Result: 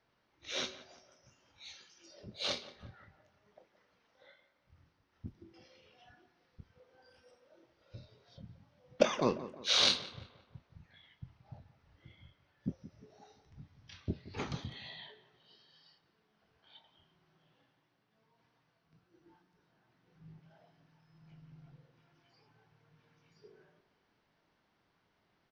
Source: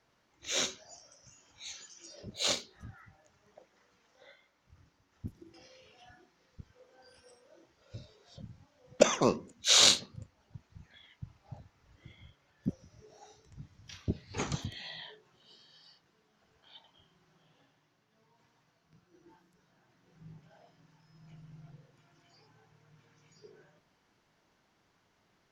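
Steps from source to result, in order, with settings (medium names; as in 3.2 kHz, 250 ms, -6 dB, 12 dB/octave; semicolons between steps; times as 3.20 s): Savitzky-Golay filter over 15 samples; doubling 24 ms -13 dB; tape echo 173 ms, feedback 49%, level -14 dB, low-pass 2.2 kHz; trim -4 dB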